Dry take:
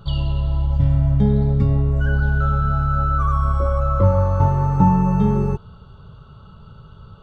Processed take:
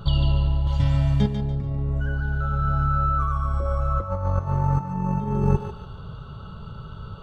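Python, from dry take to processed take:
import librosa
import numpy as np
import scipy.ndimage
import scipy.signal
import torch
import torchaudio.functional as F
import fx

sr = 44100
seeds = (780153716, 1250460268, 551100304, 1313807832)

p1 = fx.tilt_shelf(x, sr, db=-9.0, hz=1500.0, at=(0.67, 1.27))
p2 = fx.over_compress(p1, sr, threshold_db=-21.0, ratio=-0.5)
y = p2 + fx.echo_thinned(p2, sr, ms=145, feedback_pct=33, hz=420.0, wet_db=-7, dry=0)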